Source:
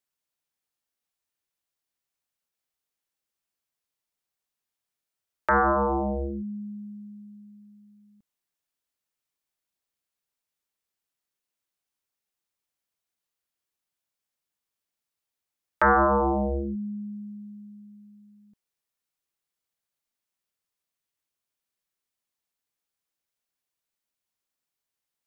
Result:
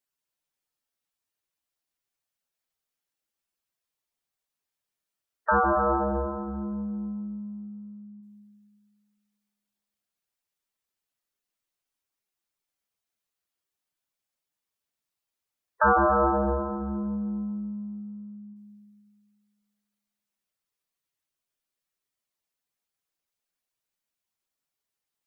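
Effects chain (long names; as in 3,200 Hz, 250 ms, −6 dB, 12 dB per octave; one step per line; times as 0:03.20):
gate on every frequency bin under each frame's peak −10 dB strong
comb and all-pass reverb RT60 2.1 s, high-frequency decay 0.7×, pre-delay 105 ms, DRR 6 dB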